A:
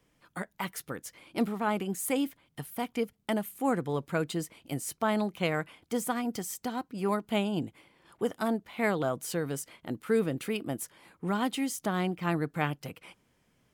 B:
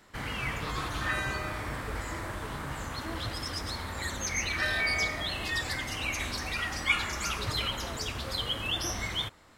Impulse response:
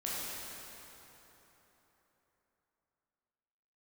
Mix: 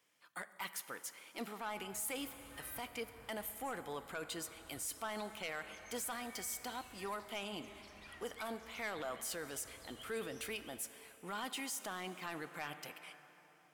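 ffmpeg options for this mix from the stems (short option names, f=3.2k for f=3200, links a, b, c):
-filter_complex "[0:a]highpass=f=1.4k:p=1,volume=-1.5dB,asplit=3[a][b][c];[b]volume=-17.5dB[d];[1:a]adelay=1500,volume=-18.5dB,asplit=2[e][f];[f]volume=-23dB[g];[c]apad=whole_len=488274[h];[e][h]sidechaincompress=threshold=-43dB:ratio=8:attack=12:release=1120[i];[2:a]atrim=start_sample=2205[j];[d][g]amix=inputs=2:normalize=0[k];[k][j]afir=irnorm=-1:irlink=0[l];[a][i][l]amix=inputs=3:normalize=0,asoftclip=type=tanh:threshold=-29.5dB,alimiter=level_in=9.5dB:limit=-24dB:level=0:latency=1:release=12,volume=-9.5dB"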